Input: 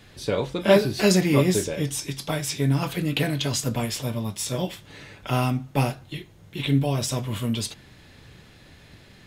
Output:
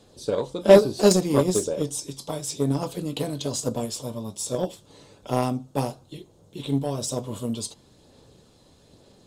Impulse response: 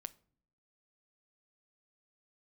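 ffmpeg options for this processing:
-af "aphaser=in_gain=1:out_gain=1:delay=1:decay=0.24:speed=1.1:type=sinusoidal,equalizer=f=250:t=o:w=1:g=5,equalizer=f=500:t=o:w=1:g=11,equalizer=f=1000:t=o:w=1:g=6,equalizer=f=2000:t=o:w=1:g=-11,equalizer=f=4000:t=o:w=1:g=5,equalizer=f=8000:t=o:w=1:g=11,aeval=exprs='1.88*(cos(1*acos(clip(val(0)/1.88,-1,1)))-cos(1*PI/2))+0.119*(cos(7*acos(clip(val(0)/1.88,-1,1)))-cos(7*PI/2))':c=same,volume=0.501"

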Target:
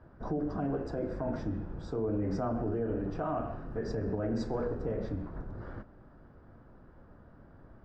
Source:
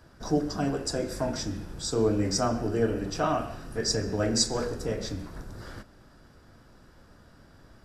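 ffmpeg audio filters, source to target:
-af "lowpass=1200,alimiter=level_in=1.06:limit=0.0631:level=0:latency=1:release=54,volume=0.944"

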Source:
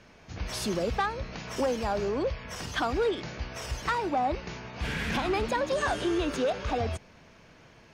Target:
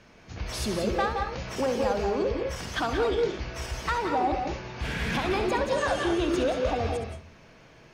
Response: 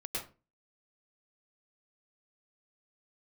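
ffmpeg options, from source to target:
-filter_complex "[0:a]asplit=2[s0][s1];[1:a]atrim=start_sample=2205,adelay=67[s2];[s1][s2]afir=irnorm=-1:irlink=0,volume=0.562[s3];[s0][s3]amix=inputs=2:normalize=0"

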